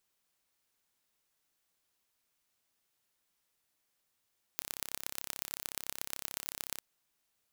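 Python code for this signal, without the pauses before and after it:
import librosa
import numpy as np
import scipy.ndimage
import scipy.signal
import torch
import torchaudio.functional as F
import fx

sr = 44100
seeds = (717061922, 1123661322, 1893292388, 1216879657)

y = fx.impulse_train(sr, length_s=2.21, per_s=33.7, accent_every=4, level_db=-7.5)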